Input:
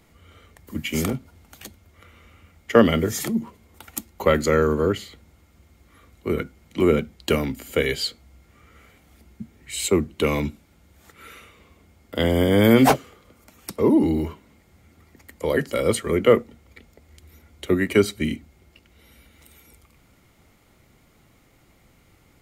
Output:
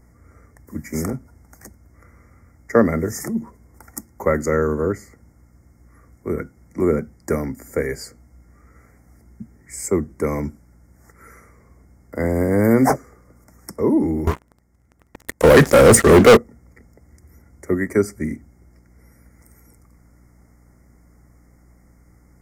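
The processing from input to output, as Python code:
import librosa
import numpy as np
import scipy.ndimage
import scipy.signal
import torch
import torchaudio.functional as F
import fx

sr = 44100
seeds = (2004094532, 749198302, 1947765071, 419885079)

y = fx.add_hum(x, sr, base_hz=60, snr_db=28)
y = scipy.signal.sosfilt(scipy.signal.ellip(3, 1.0, 40, [2000.0, 5200.0], 'bandstop', fs=sr, output='sos'), y)
y = fx.high_shelf(y, sr, hz=6500.0, db=-4.5)
y = fx.leveller(y, sr, passes=5, at=(14.27, 16.37))
y = fx.peak_eq(y, sr, hz=9000.0, db=3.0, octaves=0.93)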